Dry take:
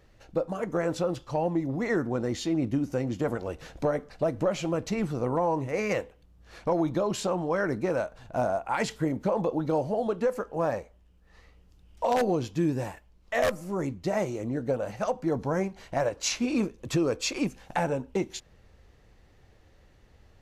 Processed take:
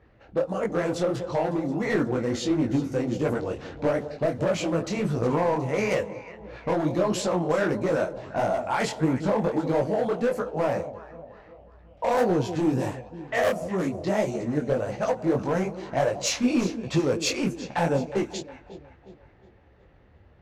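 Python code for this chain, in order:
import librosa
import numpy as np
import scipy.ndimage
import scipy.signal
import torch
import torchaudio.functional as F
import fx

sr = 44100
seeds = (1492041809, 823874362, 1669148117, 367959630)

y = scipy.signal.sosfilt(scipy.signal.butter(2, 44.0, 'highpass', fs=sr, output='sos'), x)
y = fx.echo_alternate(y, sr, ms=181, hz=820.0, feedback_pct=67, wet_db=-12.0)
y = np.clip(y, -10.0 ** (-22.0 / 20.0), 10.0 ** (-22.0 / 20.0))
y = fx.env_lowpass(y, sr, base_hz=2100.0, full_db=-25.0)
y = fx.detune_double(y, sr, cents=53)
y = y * librosa.db_to_amplitude(7.0)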